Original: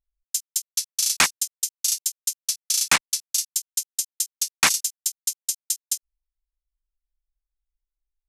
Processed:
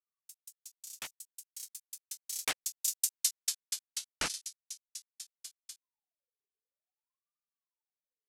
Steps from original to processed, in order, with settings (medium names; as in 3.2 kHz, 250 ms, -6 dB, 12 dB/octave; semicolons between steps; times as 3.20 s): Doppler pass-by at 3.17 s, 52 m/s, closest 11 m; ring modulator with a swept carrier 810 Hz, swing 50%, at 0.54 Hz